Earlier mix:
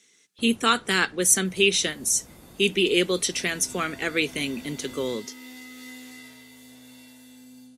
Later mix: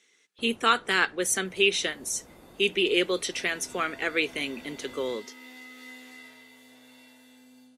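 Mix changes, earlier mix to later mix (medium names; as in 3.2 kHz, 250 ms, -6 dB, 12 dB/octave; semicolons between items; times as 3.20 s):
first sound: add tilt EQ -2 dB/octave; master: add tone controls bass -14 dB, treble -9 dB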